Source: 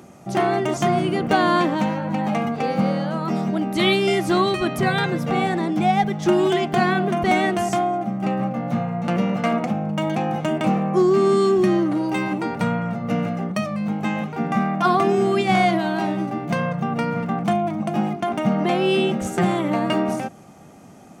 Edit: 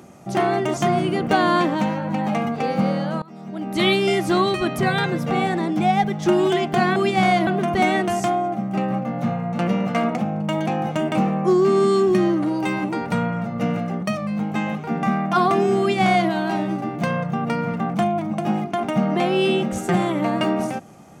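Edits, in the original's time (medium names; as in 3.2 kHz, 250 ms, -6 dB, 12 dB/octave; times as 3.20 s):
3.22–3.79 s: fade in quadratic, from -20.5 dB
15.28–15.79 s: copy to 6.96 s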